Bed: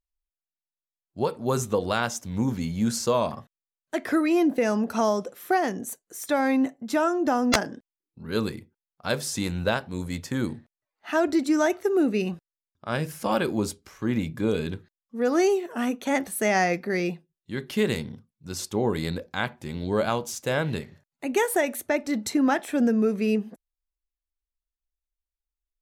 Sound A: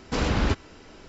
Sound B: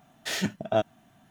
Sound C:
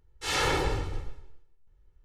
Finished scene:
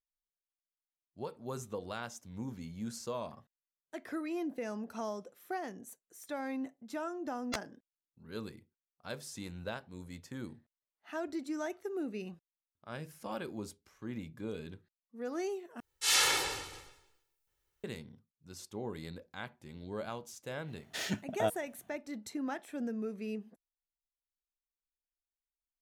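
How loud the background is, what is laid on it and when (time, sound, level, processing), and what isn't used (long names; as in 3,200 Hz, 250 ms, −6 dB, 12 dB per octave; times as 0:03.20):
bed −15.5 dB
0:15.80: overwrite with C −5.5 dB + spectral tilt +4.5 dB per octave
0:20.68: mix in B −7 dB
not used: A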